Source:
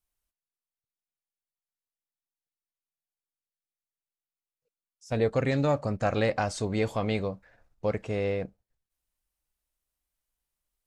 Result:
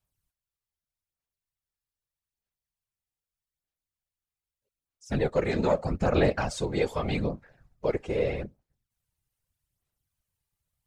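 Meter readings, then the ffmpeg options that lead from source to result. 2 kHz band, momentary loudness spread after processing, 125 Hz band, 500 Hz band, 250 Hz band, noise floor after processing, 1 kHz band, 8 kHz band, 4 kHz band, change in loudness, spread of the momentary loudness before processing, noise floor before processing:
0.0 dB, 9 LU, -0.5 dB, +1.0 dB, +0.5 dB, under -85 dBFS, -0.5 dB, -0.5 dB, +0.5 dB, +0.5 dB, 8 LU, under -85 dBFS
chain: -af "aphaser=in_gain=1:out_gain=1:delay=2.5:decay=0.5:speed=0.81:type=sinusoidal,afftfilt=real='hypot(re,im)*cos(2*PI*random(0))':imag='hypot(re,im)*sin(2*PI*random(1))':win_size=512:overlap=0.75,volume=5dB"

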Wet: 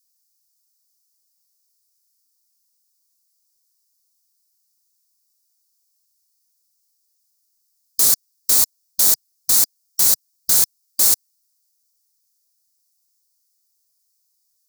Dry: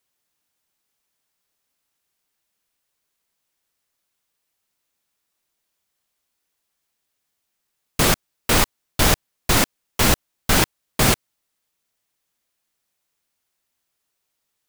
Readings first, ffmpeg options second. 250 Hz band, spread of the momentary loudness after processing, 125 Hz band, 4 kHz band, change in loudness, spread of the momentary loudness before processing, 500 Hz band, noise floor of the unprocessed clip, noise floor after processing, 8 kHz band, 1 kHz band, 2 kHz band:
-17.5 dB, 5 LU, under -20 dB, -2.0 dB, +4.5 dB, 5 LU, -15.0 dB, -77 dBFS, -69 dBFS, +7.0 dB, -14.5 dB, -15.5 dB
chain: -af "highshelf=f=3.8k:t=q:w=3:g=9.5,afftfilt=real='re*lt(hypot(re,im),0.631)':imag='im*lt(hypot(re,im),0.631)':win_size=1024:overlap=0.75,crystalizer=i=2.5:c=0,volume=-14.5dB"

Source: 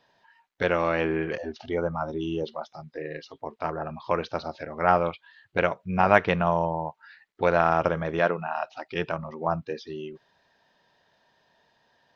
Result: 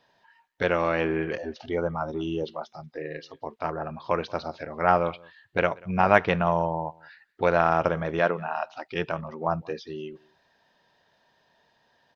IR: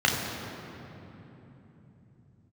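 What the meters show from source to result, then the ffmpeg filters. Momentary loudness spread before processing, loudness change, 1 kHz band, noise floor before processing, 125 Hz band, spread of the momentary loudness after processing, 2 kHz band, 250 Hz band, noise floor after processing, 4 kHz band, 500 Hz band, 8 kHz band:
16 LU, 0.0 dB, 0.0 dB, -70 dBFS, 0.0 dB, 16 LU, 0.0 dB, 0.0 dB, -68 dBFS, 0.0 dB, 0.0 dB, n/a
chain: -filter_complex "[0:a]asplit=2[a][b];[b]adelay=186.6,volume=-25dB,highshelf=f=4k:g=-4.2[c];[a][c]amix=inputs=2:normalize=0"

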